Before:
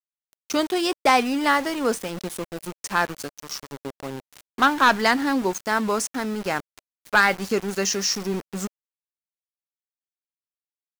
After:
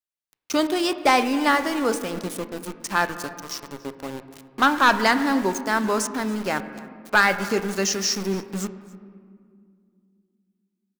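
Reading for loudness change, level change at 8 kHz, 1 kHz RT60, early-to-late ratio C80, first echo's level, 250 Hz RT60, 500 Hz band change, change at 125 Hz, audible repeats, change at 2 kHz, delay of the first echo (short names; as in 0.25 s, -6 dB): 0.0 dB, 0.0 dB, 2.0 s, 12.5 dB, -21.5 dB, 3.3 s, +0.5 dB, +1.0 dB, 1, +0.5 dB, 0.281 s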